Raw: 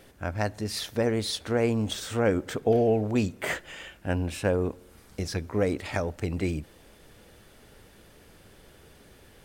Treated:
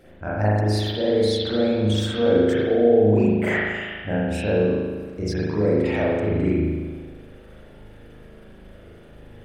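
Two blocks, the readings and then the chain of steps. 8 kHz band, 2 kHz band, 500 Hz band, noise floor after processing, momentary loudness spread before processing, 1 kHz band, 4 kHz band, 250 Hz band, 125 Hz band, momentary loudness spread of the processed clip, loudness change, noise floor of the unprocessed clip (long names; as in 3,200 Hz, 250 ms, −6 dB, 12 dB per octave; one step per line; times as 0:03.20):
can't be measured, +6.0 dB, +8.0 dB, −46 dBFS, 11 LU, +4.0 dB, +5.0 dB, +7.5 dB, +7.0 dB, 12 LU, +7.0 dB, −55 dBFS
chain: spectral envelope exaggerated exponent 1.5
brickwall limiter −19 dBFS, peak gain reduction 7 dB
spring reverb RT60 1.5 s, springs 38 ms, chirp 75 ms, DRR −8.5 dB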